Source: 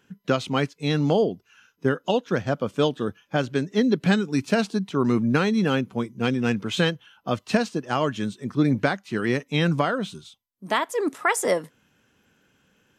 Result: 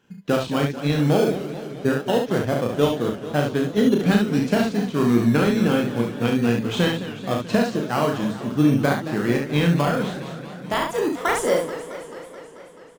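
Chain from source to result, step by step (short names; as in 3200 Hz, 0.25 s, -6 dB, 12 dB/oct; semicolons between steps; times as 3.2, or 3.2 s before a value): high shelf 8600 Hz -6 dB; in parallel at -7 dB: decimation with a swept rate 18×, swing 60% 0.22 Hz; on the sum: early reflections 34 ms -4 dB, 70 ms -5 dB; warbling echo 0.217 s, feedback 71%, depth 185 cents, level -13 dB; gain -2.5 dB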